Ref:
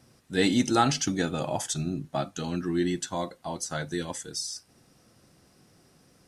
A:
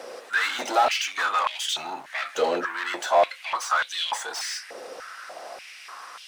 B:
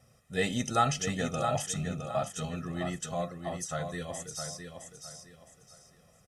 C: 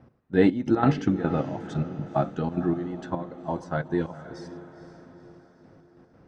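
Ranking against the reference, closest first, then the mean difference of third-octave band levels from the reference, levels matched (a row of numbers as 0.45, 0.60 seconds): B, C, A; 6.0, 9.5, 13.5 decibels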